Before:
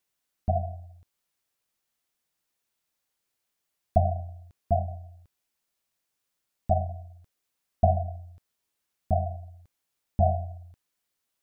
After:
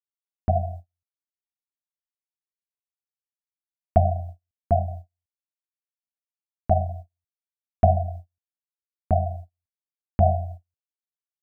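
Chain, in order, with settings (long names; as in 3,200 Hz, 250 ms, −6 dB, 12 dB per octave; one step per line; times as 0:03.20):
noise gate −39 dBFS, range −42 dB
level +4 dB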